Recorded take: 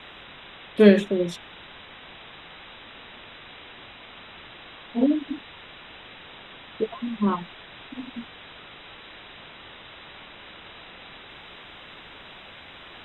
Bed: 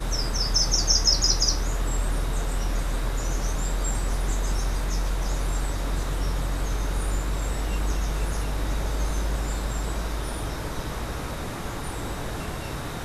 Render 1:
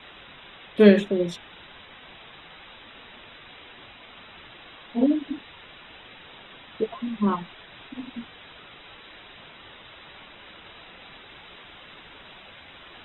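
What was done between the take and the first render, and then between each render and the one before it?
denoiser 6 dB, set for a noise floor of -46 dBFS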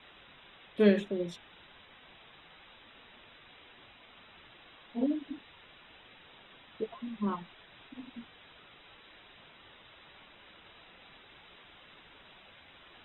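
gain -9.5 dB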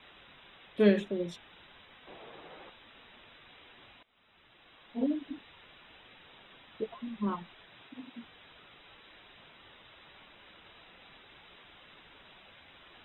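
2.07–2.7 bell 460 Hz +14.5 dB 2.1 oct; 4.03–5.08 fade in, from -21 dB; 7.68–8.22 HPF 56 Hz -> 160 Hz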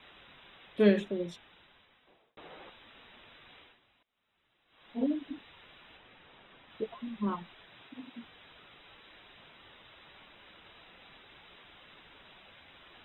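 1.08–2.37 fade out; 3.59–4.89 dip -13.5 dB, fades 0.21 s; 5.97–6.7 LPF 2700 Hz 6 dB/oct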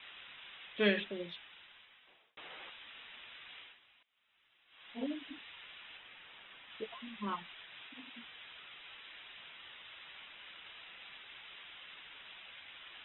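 steep low-pass 3500 Hz 48 dB/oct; tilt shelf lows -10 dB, about 1200 Hz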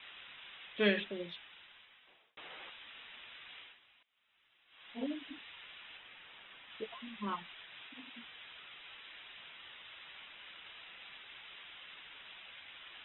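nothing audible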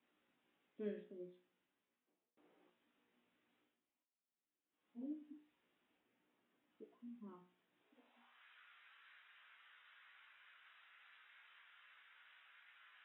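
resonator 60 Hz, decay 0.39 s, harmonics all, mix 80%; band-pass sweep 270 Hz -> 1500 Hz, 7.72–8.47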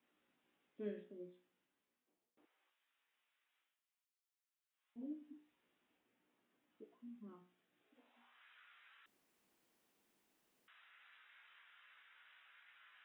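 2.45–4.96 HPF 1200 Hz; 7.19–7.99 notch 970 Hz, Q 5.9; 9.06–10.68 room tone

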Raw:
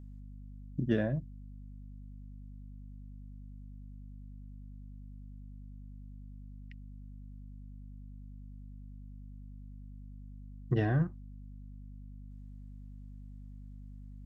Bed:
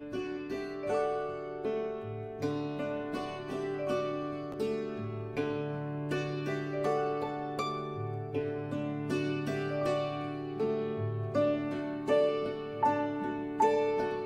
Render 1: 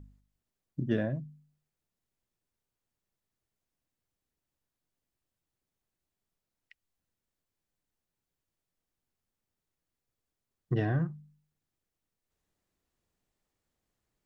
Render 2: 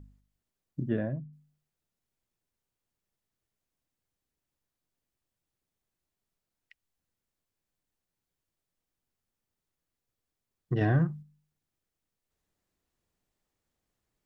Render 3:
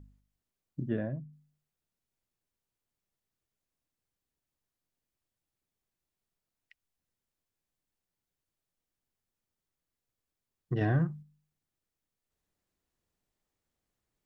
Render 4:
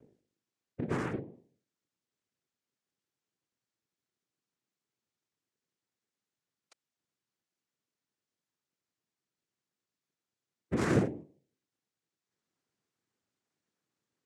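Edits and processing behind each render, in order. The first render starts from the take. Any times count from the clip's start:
de-hum 50 Hz, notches 5
0.89–1.33 air absorption 410 m; 10.81–11.23 gain +4.5 dB
gain -2.5 dB
noise vocoder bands 3

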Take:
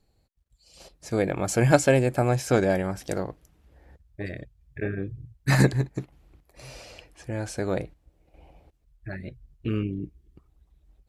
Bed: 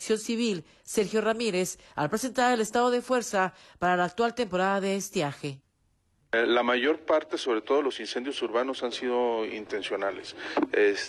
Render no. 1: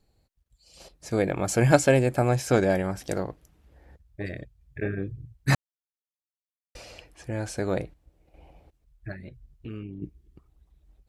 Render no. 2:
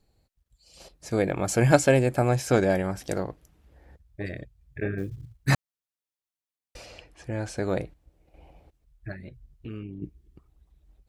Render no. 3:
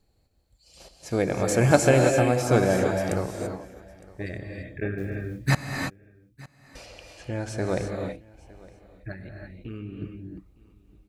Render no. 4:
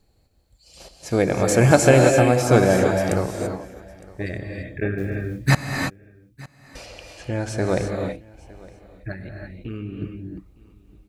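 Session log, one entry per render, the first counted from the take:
5.55–6.75 mute; 9.12–10.02 compressor 2:1, threshold -41 dBFS
4.98–5.49 short-mantissa float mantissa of 4-bit; 6.86–7.63 high shelf 11000 Hz -12 dB
echo 0.91 s -23 dB; non-linear reverb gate 0.36 s rising, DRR 2.5 dB
gain +5 dB; limiter -2 dBFS, peak gain reduction 2.5 dB

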